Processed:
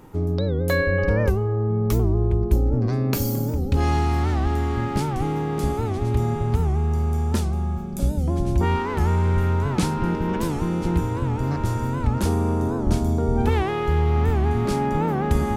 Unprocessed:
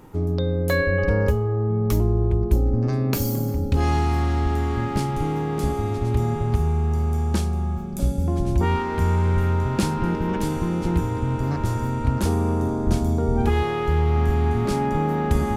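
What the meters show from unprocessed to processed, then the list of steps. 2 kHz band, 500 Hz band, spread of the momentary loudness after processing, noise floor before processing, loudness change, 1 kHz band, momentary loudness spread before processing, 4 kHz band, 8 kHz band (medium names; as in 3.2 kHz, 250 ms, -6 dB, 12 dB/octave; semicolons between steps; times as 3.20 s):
0.0 dB, 0.0 dB, 4 LU, -27 dBFS, 0.0 dB, 0.0 dB, 4 LU, 0.0 dB, 0.0 dB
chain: warped record 78 rpm, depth 160 cents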